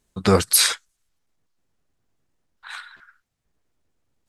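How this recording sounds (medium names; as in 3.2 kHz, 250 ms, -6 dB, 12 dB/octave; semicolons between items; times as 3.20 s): noise floor -77 dBFS; spectral tilt -3.0 dB/octave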